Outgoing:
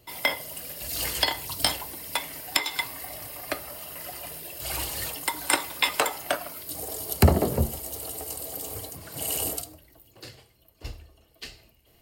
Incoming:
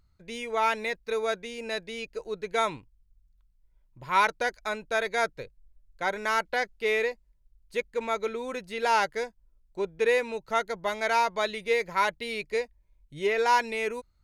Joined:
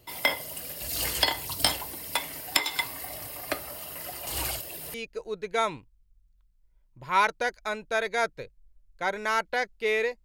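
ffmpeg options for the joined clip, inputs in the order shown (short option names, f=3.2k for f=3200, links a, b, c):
-filter_complex "[0:a]apad=whole_dur=10.24,atrim=end=10.24,asplit=2[a][b];[a]atrim=end=4.272[c];[b]atrim=start=4.268:end=4.942,asetpts=PTS-STARTPTS,areverse[d];[1:a]atrim=start=1.938:end=7.24[e];[c][d]acrossfade=d=0.004:c1=hsin:c2=hsin[f];[f][e]acrossfade=d=0.004:c1=hsin:c2=hsin"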